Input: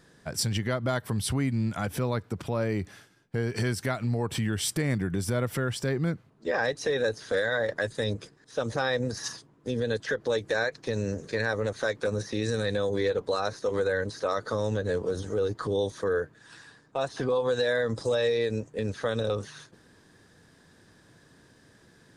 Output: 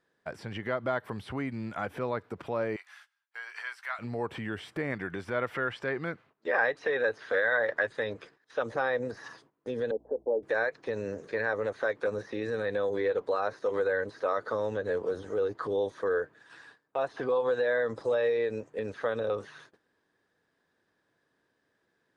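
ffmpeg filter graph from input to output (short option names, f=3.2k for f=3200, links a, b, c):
-filter_complex "[0:a]asettb=1/sr,asplit=3[a][b][c];[a]atrim=end=2.764[d];[b]atrim=start=2.76:end=3.99,asetpts=PTS-STARTPTS,afade=t=in:d=0.004:c=qsin,afade=t=out:st=1.226:d=0.004:c=qsin,highpass=f=1k:w=0.5412,highpass=f=1k:w=1.3066,highshelf=f=3.4k:g=3,asplit=2[e][f];[f]adelay=14,volume=-10.5dB[g];[e][g]amix=inputs=2:normalize=0,atrim=end_sample=54243[h];[c]atrim=start=3.986[i];[d][h]acrossfade=d=0.004:c1=hsin:c2=qsin[j];[j][i]acrossfade=d=0.004:c1=qsin:c2=hsin,asettb=1/sr,asplit=3[k][l][m];[k]atrim=end=4.924[n];[l]atrim=start=4.92:end=8.63,asetpts=PTS-STARTPTS,afade=t=in:d=0.004:c=qsin,afade=t=out:st=3.706:d=0.004:c=qsin,lowpass=f=1.7k:p=1,tiltshelf=f=1.3k:g=-8,acontrast=39[o];[m]atrim=start=8.626[p];[n][o]acrossfade=d=0.004:c1=hsin:c2=qsin[q];[q][p]acrossfade=d=0.004:c1=qsin:c2=hsin,asettb=1/sr,asplit=3[r][s][t];[r]atrim=end=9.914[u];[s]atrim=start=9.91:end=10.43,asetpts=PTS-STARTPTS,afade=t=in:d=0.004:c=qsin,afade=t=out:st=0.516:d=0.004:c=qsin,agate=range=-33dB:threshold=-43dB:ratio=3:release=100:detection=peak,asuperpass=centerf=430:order=12:qfactor=0.67,aeval=exprs='val(0)+0.00224*(sin(2*PI*60*n/s)+sin(2*PI*2*60*n/s)/2+sin(2*PI*3*60*n/s)/3+sin(2*PI*4*60*n/s)/4+sin(2*PI*5*60*n/s)/5)':c=same[v];[t]atrim=start=10.426[w];[u][v]acrossfade=d=0.004:c1=hsin:c2=qsin[x];[x][w]acrossfade=d=0.004:c1=qsin:c2=hsin,agate=range=-14dB:threshold=-52dB:ratio=16:detection=peak,acrossover=split=2700[y][z];[z]acompressor=threshold=-50dB:ratio=4:attack=1:release=60[aa];[y][aa]amix=inputs=2:normalize=0,bass=f=250:g=-13,treble=f=4k:g=-11"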